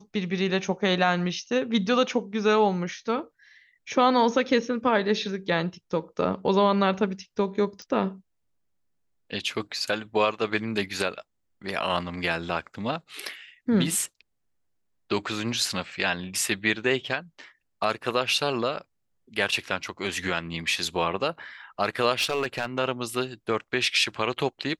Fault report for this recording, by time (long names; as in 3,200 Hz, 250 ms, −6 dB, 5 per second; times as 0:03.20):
0:07.82: click −27 dBFS
0:22.19–0:22.66: clipping −20 dBFS